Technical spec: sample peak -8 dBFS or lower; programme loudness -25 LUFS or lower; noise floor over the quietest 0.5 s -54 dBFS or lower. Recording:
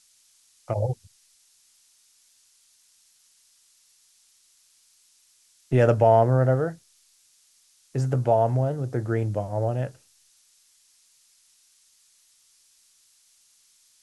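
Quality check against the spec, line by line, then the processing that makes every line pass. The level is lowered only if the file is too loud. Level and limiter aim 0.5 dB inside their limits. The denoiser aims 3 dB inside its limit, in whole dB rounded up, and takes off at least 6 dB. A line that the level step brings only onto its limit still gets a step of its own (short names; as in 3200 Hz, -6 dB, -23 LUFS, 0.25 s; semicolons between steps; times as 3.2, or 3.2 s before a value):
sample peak -7.0 dBFS: fail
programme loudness -24.0 LUFS: fail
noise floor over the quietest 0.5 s -62 dBFS: OK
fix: gain -1.5 dB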